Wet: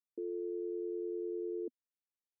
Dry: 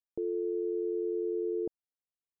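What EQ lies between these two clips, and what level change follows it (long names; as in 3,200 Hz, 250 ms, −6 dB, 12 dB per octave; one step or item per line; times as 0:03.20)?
moving average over 59 samples
Chebyshev high-pass filter 250 Hz, order 4
−1.0 dB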